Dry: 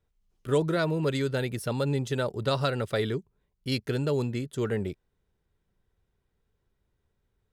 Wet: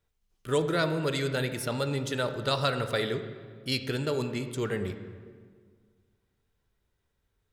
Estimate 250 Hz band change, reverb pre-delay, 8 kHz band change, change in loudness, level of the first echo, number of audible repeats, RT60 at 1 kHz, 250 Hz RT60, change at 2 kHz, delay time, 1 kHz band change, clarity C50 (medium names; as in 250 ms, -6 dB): -2.0 dB, 7 ms, +3.5 dB, -1.0 dB, no echo, no echo, 1.7 s, 2.1 s, +2.5 dB, no echo, +1.0 dB, 9.5 dB